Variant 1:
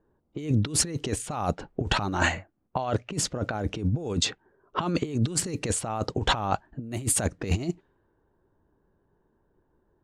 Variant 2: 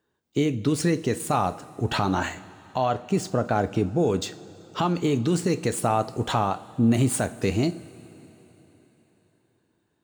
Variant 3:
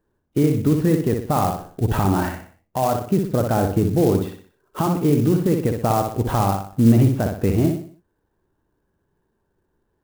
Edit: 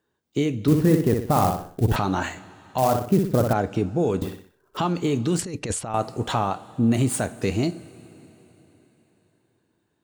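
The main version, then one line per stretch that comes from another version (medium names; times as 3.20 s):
2
0.68–1.96 s: from 3
2.78–3.53 s: from 3
4.22–4.77 s: from 3
5.39–5.94 s: from 1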